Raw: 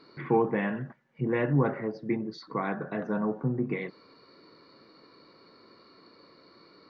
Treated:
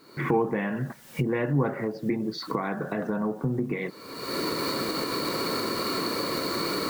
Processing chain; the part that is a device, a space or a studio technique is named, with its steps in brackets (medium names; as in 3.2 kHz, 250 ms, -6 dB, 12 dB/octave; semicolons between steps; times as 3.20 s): cheap recorder with automatic gain (white noise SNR 36 dB; recorder AGC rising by 43 dB/s)